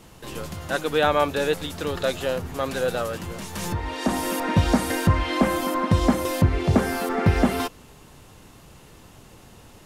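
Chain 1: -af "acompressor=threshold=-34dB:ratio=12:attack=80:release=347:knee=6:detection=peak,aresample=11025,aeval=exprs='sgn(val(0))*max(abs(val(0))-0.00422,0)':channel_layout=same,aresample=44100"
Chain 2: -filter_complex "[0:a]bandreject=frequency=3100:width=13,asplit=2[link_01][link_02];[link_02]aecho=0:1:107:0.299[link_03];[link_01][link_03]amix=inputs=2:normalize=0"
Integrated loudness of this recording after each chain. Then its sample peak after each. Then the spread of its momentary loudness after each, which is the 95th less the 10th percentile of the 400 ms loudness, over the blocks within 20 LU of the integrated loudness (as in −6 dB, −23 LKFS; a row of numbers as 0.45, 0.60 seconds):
−37.0, −23.5 LKFS; −17.0, −5.5 dBFS; 4, 11 LU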